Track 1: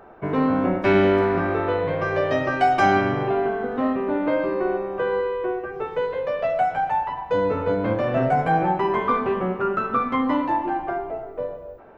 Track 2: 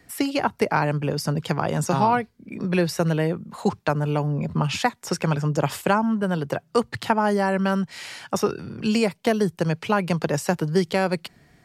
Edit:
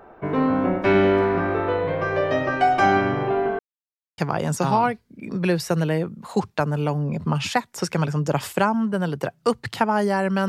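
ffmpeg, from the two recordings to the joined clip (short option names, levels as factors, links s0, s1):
-filter_complex "[0:a]apad=whole_dur=10.48,atrim=end=10.48,asplit=2[s0][s1];[s0]atrim=end=3.59,asetpts=PTS-STARTPTS,afade=t=out:st=3.586:d=0.004:c=hsin[s2];[s1]atrim=start=3.59:end=4.18,asetpts=PTS-STARTPTS,volume=0[s3];[1:a]atrim=start=1.47:end=7.77,asetpts=PTS-STARTPTS,afade=t=in:d=0.004:c=hsin[s4];[s2][s3][s4]concat=n=3:v=0:a=1"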